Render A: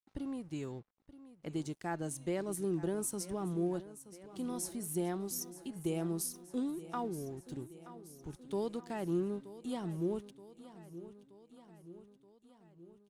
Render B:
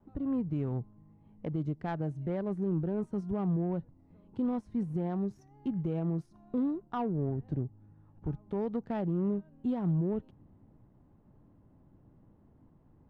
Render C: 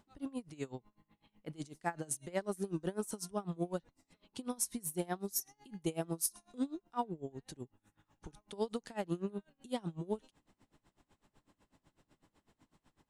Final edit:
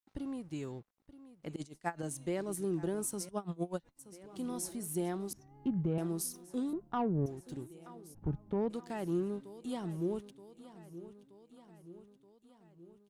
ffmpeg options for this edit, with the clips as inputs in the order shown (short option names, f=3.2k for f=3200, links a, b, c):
-filter_complex "[2:a]asplit=2[a][b];[1:a]asplit=3[c][d][e];[0:a]asplit=6[f][g][h][i][j][k];[f]atrim=end=1.562[l];[a]atrim=start=1.558:end=2.032[m];[g]atrim=start=2.028:end=3.292[n];[b]atrim=start=3.288:end=3.992[o];[h]atrim=start=3.988:end=5.332[p];[c]atrim=start=5.328:end=5.982[q];[i]atrim=start=5.978:end=6.732[r];[d]atrim=start=6.728:end=7.262[s];[j]atrim=start=7.258:end=8.15[t];[e]atrim=start=8.13:end=8.71[u];[k]atrim=start=8.69[v];[l][m]acrossfade=d=0.004:c1=hsin:c2=hsin[w];[w][n]acrossfade=d=0.004:c1=hsin:c2=hsin[x];[x][o]acrossfade=d=0.004:c1=hsin:c2=hsin[y];[y][p]acrossfade=d=0.004:c1=hsin:c2=hsin[z];[z][q]acrossfade=d=0.004:c1=hsin:c2=hsin[aa];[aa][r]acrossfade=d=0.004:c1=hsin:c2=hsin[ab];[ab][s]acrossfade=d=0.004:c1=hsin:c2=hsin[ac];[ac][t]acrossfade=d=0.004:c1=hsin:c2=hsin[ad];[ad][u]acrossfade=d=0.02:c1=tri:c2=tri[ae];[ae][v]acrossfade=d=0.02:c1=tri:c2=tri"